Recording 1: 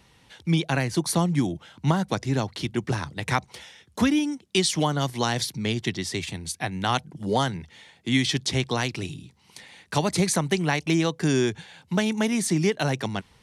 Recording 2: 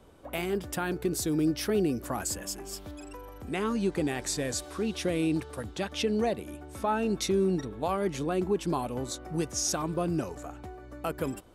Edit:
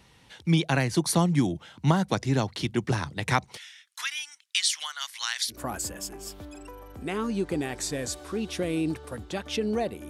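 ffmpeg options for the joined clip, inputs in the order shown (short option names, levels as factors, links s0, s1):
-filter_complex "[0:a]asettb=1/sr,asplit=3[s0][s1][s2];[s0]atrim=end=3.574[s3];[s1]atrim=start=3.57:end=5.62,asetpts=PTS-STARTPTS,afade=t=in:d=0.004:c=qsin,afade=t=out:st=2.046:d=0.004:c=qsin,highpass=f=1400:w=0.5412,highpass=f=1400:w=1.3066[s4];[s2]atrim=start=5.616[s5];[s3][s4]acrossfade=d=0.004:c1=hsin:c2=qsin[s6];[s6][s5]acrossfade=d=0.004:c1=qsin:c2=hsin,apad=whole_dur=10.09,atrim=end=10.09,atrim=end=5.62,asetpts=PTS-STARTPTS[s7];[1:a]atrim=start=1.94:end=6.55,asetpts=PTS-STARTPTS[s8];[s7][s8]acrossfade=d=0.14:c1=tri:c2=tri"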